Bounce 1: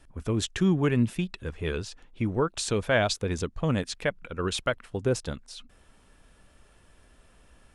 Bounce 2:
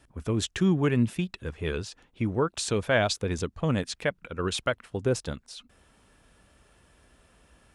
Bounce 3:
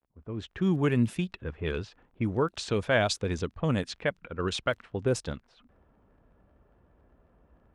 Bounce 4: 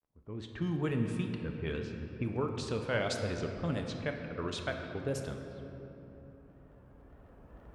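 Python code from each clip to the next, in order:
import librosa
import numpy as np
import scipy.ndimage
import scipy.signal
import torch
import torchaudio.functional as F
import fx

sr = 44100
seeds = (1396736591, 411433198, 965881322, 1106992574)

y1 = scipy.signal.sosfilt(scipy.signal.butter(2, 47.0, 'highpass', fs=sr, output='sos'), x)
y2 = fx.fade_in_head(y1, sr, length_s=0.84)
y2 = fx.dmg_crackle(y2, sr, seeds[0], per_s=28.0, level_db=-43.0)
y2 = fx.env_lowpass(y2, sr, base_hz=880.0, full_db=-22.0)
y2 = F.gain(torch.from_numpy(y2), -1.0).numpy()
y3 = fx.recorder_agc(y2, sr, target_db=-17.0, rise_db_per_s=6.3, max_gain_db=30)
y3 = fx.wow_flutter(y3, sr, seeds[1], rate_hz=2.1, depth_cents=110.0)
y3 = fx.room_shoebox(y3, sr, seeds[2], volume_m3=200.0, walls='hard', distance_m=0.32)
y3 = F.gain(torch.from_numpy(y3), -8.5).numpy()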